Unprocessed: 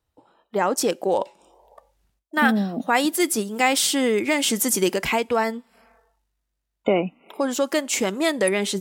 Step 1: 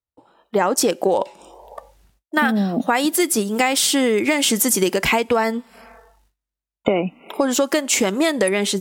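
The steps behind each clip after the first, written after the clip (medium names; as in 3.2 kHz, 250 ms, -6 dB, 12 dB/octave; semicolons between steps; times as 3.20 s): level rider gain up to 12 dB; gate with hold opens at -51 dBFS; compression, threshold -17 dBFS, peak gain reduction 9 dB; trim +2.5 dB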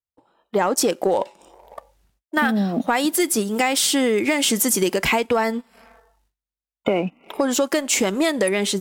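waveshaping leveller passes 1; trim -5 dB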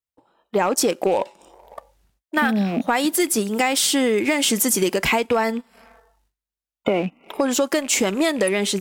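rattle on loud lows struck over -36 dBFS, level -27 dBFS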